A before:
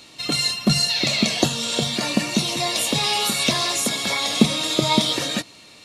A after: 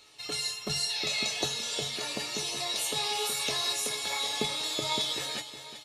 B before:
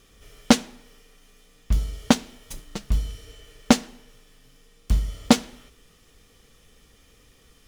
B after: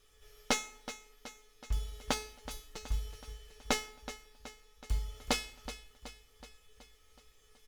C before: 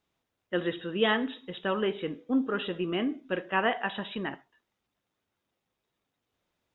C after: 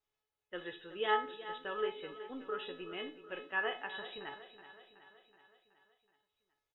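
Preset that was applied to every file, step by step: peaking EQ 210 Hz -11.5 dB 1.1 oct; feedback comb 430 Hz, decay 0.4 s, mix 90%; feedback delay 374 ms, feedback 56%, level -13 dB; trim +6.5 dB

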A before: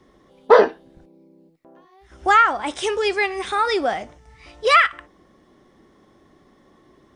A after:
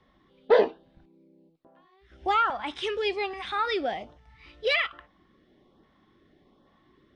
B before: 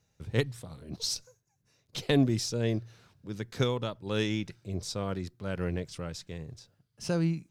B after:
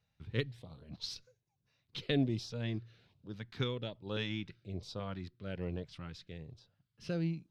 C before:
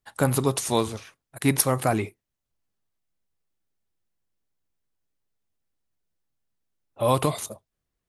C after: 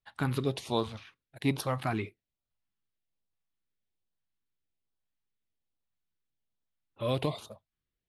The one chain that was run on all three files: resonant high shelf 5.3 kHz -12.5 dB, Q 1.5; LFO notch saw up 1.2 Hz 300–2400 Hz; trim -6.5 dB

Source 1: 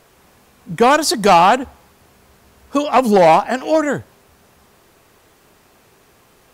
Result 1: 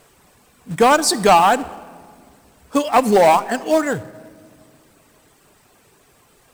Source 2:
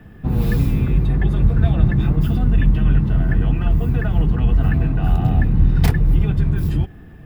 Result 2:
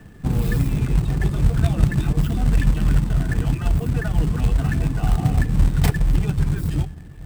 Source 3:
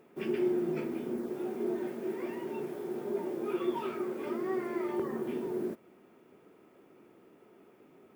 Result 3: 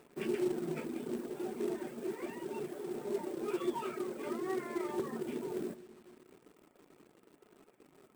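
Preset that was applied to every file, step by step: reverb removal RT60 0.82 s; simulated room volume 3300 m³, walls mixed, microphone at 0.38 m; in parallel at -5 dB: companded quantiser 4-bit; on the sum: peaking EQ 8.2 kHz +8 dB 0.22 oct; trim -5 dB

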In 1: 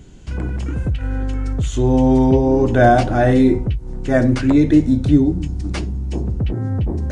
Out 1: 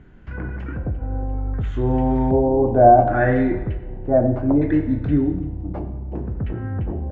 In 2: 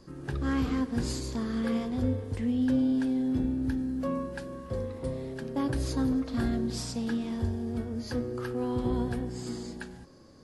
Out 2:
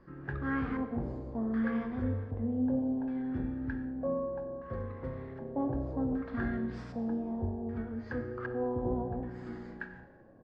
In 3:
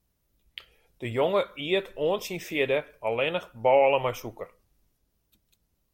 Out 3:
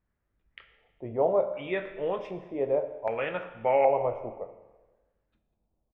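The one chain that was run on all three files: doubling 22 ms -12.5 dB; LFO low-pass square 0.65 Hz 730–1700 Hz; Schroeder reverb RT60 1.2 s, combs from 28 ms, DRR 9 dB; trim -5.5 dB

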